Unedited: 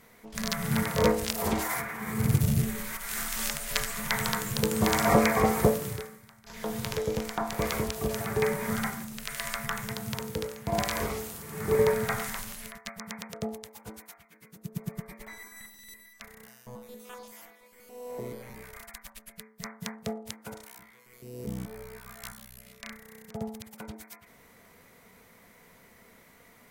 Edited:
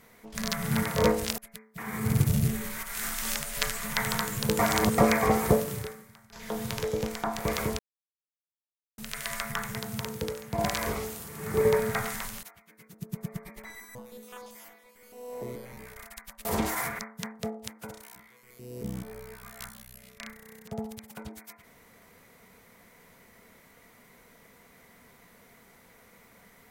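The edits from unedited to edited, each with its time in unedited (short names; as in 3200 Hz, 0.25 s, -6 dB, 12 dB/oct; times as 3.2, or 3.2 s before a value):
1.38–1.92 swap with 19.22–19.62
4.73–5.12 reverse
7.93–9.12 mute
12.57–14.06 cut
15.58–16.72 cut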